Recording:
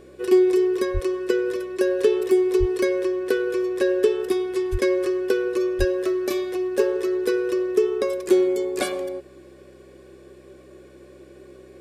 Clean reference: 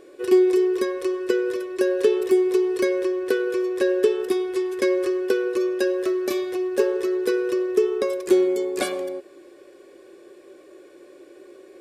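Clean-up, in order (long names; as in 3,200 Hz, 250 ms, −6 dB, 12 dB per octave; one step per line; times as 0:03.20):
hum removal 64.8 Hz, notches 4
high-pass at the plosives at 0:00.93/0:02.59/0:04.71/0:05.78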